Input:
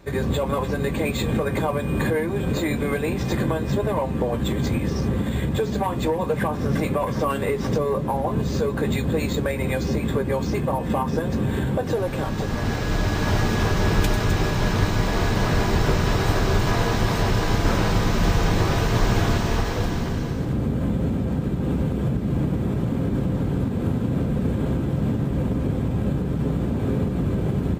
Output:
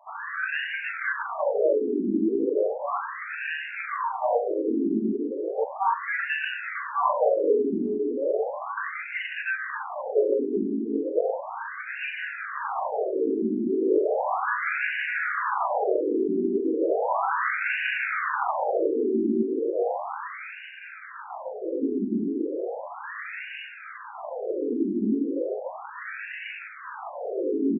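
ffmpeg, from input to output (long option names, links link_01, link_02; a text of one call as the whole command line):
ffmpeg -i in.wav -filter_complex "[0:a]highpass=frequency=210:poles=1,bandreject=frequency=50:width_type=h:width=6,bandreject=frequency=100:width_type=h:width=6,bandreject=frequency=150:width_type=h:width=6,bandreject=frequency=200:width_type=h:width=6,bandreject=frequency=250:width_type=h:width=6,bandreject=frequency=300:width_type=h:width=6,bandreject=frequency=350:width_type=h:width=6,bandreject=frequency=400:width_type=h:width=6,flanger=delay=18:depth=3.2:speed=0.83,acrusher=samples=16:mix=1:aa=0.000001:lfo=1:lforange=9.6:lforate=0.66,asplit=2[link_01][link_02];[link_02]aecho=0:1:40|90|152.5|230.6|328.3:0.631|0.398|0.251|0.158|0.1[link_03];[link_01][link_03]amix=inputs=2:normalize=0,afftfilt=real='re*between(b*sr/1024,290*pow(2100/290,0.5+0.5*sin(2*PI*0.35*pts/sr))/1.41,290*pow(2100/290,0.5+0.5*sin(2*PI*0.35*pts/sr))*1.41)':imag='im*between(b*sr/1024,290*pow(2100/290,0.5+0.5*sin(2*PI*0.35*pts/sr))/1.41,290*pow(2100/290,0.5+0.5*sin(2*PI*0.35*pts/sr))*1.41)':win_size=1024:overlap=0.75,volume=8dB" out.wav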